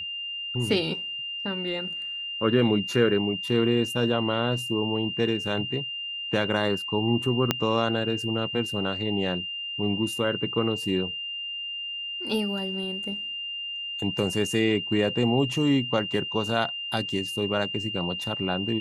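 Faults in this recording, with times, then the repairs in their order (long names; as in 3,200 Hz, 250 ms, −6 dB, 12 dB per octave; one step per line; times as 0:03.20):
whistle 2,800 Hz −31 dBFS
0:07.51: click −6 dBFS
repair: click removal
notch filter 2,800 Hz, Q 30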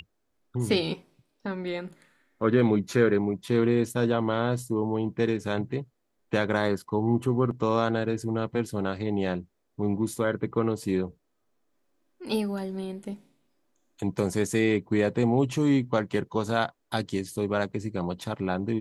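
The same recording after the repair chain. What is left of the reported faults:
0:07.51: click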